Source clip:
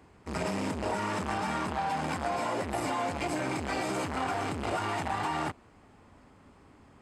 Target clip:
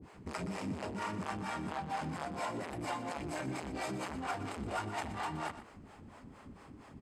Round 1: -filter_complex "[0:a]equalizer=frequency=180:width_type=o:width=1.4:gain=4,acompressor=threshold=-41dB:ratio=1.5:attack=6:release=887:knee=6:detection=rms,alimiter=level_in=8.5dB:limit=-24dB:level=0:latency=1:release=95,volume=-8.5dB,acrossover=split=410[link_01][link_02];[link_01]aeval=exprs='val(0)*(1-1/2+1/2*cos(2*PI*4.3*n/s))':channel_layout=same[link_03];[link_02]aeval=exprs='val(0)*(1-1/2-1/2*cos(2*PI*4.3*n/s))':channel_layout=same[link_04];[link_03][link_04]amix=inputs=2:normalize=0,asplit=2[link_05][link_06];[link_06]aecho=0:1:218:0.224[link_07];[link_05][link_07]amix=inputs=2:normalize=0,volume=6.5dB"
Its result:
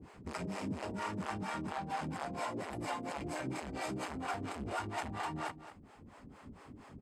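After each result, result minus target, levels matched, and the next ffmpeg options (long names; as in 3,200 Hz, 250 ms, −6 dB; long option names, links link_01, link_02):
echo 97 ms late; downward compressor: peak gain reduction +6.5 dB
-filter_complex "[0:a]equalizer=frequency=180:width_type=o:width=1.4:gain=4,acompressor=threshold=-41dB:ratio=1.5:attack=6:release=887:knee=6:detection=rms,alimiter=level_in=8.5dB:limit=-24dB:level=0:latency=1:release=95,volume=-8.5dB,acrossover=split=410[link_01][link_02];[link_01]aeval=exprs='val(0)*(1-1/2+1/2*cos(2*PI*4.3*n/s))':channel_layout=same[link_03];[link_02]aeval=exprs='val(0)*(1-1/2-1/2*cos(2*PI*4.3*n/s))':channel_layout=same[link_04];[link_03][link_04]amix=inputs=2:normalize=0,asplit=2[link_05][link_06];[link_06]aecho=0:1:121:0.224[link_07];[link_05][link_07]amix=inputs=2:normalize=0,volume=6.5dB"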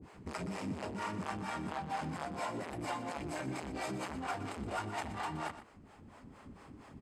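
downward compressor: peak gain reduction +6.5 dB
-filter_complex "[0:a]equalizer=frequency=180:width_type=o:width=1.4:gain=4,alimiter=level_in=8.5dB:limit=-24dB:level=0:latency=1:release=95,volume=-8.5dB,acrossover=split=410[link_01][link_02];[link_01]aeval=exprs='val(0)*(1-1/2+1/2*cos(2*PI*4.3*n/s))':channel_layout=same[link_03];[link_02]aeval=exprs='val(0)*(1-1/2-1/2*cos(2*PI*4.3*n/s))':channel_layout=same[link_04];[link_03][link_04]amix=inputs=2:normalize=0,asplit=2[link_05][link_06];[link_06]aecho=0:1:121:0.224[link_07];[link_05][link_07]amix=inputs=2:normalize=0,volume=6.5dB"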